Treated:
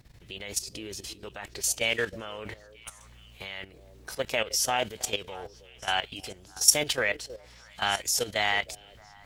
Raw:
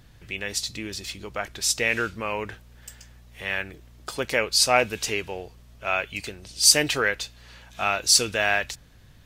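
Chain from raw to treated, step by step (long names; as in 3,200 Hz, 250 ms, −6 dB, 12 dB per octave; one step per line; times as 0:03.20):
formants moved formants +3 semitones
echo through a band-pass that steps 316 ms, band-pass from 420 Hz, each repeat 1.4 octaves, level −11.5 dB
output level in coarse steps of 13 dB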